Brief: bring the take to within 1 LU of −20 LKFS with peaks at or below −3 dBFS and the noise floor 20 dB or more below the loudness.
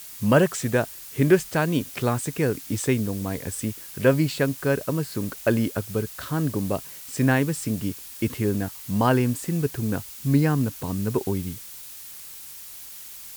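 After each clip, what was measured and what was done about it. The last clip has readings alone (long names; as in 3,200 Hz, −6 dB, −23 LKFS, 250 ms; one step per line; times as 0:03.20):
background noise floor −41 dBFS; target noise floor −45 dBFS; integrated loudness −24.5 LKFS; sample peak −4.5 dBFS; target loudness −20.0 LKFS
→ broadband denoise 6 dB, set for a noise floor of −41 dBFS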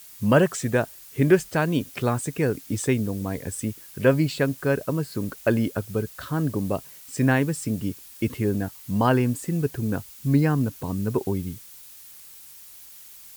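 background noise floor −46 dBFS; integrated loudness −25.0 LKFS; sample peak −4.5 dBFS; target loudness −20.0 LKFS
→ level +5 dB
brickwall limiter −3 dBFS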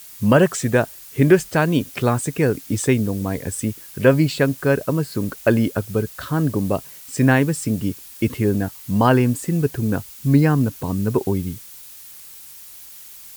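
integrated loudness −20.0 LKFS; sample peak −3.0 dBFS; background noise floor −41 dBFS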